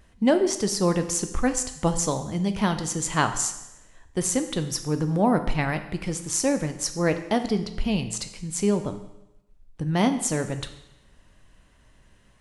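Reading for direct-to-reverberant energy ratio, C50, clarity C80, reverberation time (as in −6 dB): 8.0 dB, 11.0 dB, 13.0 dB, 0.90 s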